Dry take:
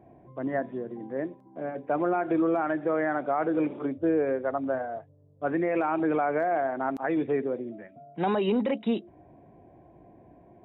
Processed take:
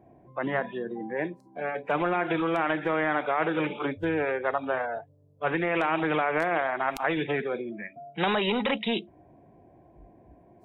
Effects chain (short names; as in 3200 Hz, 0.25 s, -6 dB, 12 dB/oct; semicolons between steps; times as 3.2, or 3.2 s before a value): spectral noise reduction 21 dB; spectral compressor 2:1; gain +4 dB